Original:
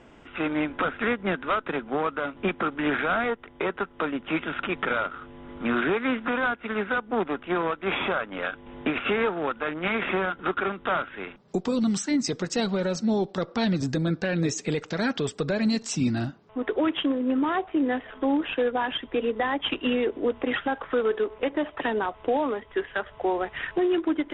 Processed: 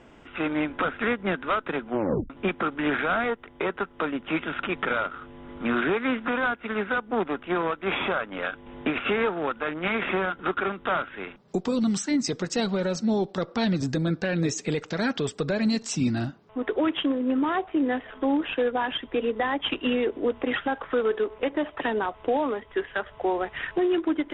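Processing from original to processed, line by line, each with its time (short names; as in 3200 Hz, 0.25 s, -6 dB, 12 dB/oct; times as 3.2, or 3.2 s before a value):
1.9 tape stop 0.40 s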